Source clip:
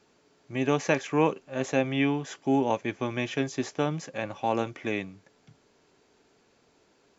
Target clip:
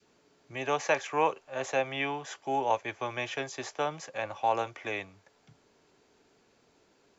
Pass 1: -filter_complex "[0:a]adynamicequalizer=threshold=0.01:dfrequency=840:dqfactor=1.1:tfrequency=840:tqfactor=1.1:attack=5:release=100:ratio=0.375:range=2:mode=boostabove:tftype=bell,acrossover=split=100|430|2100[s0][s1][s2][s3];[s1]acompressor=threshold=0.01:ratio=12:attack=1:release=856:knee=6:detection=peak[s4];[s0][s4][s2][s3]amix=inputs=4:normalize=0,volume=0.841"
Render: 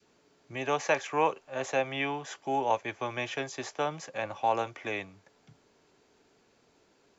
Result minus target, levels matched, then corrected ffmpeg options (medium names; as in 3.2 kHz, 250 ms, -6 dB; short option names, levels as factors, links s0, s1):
compression: peak gain reduction -6 dB
-filter_complex "[0:a]adynamicequalizer=threshold=0.01:dfrequency=840:dqfactor=1.1:tfrequency=840:tqfactor=1.1:attack=5:release=100:ratio=0.375:range=2:mode=boostabove:tftype=bell,acrossover=split=100|430|2100[s0][s1][s2][s3];[s1]acompressor=threshold=0.00473:ratio=12:attack=1:release=856:knee=6:detection=peak[s4];[s0][s4][s2][s3]amix=inputs=4:normalize=0,volume=0.841"